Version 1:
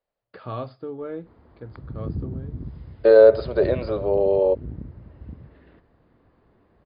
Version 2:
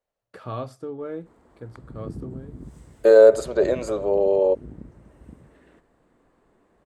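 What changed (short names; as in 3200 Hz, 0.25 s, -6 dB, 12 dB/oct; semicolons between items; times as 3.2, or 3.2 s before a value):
background: add bell 88 Hz -12 dB 1.4 oct; master: remove brick-wall FIR low-pass 5100 Hz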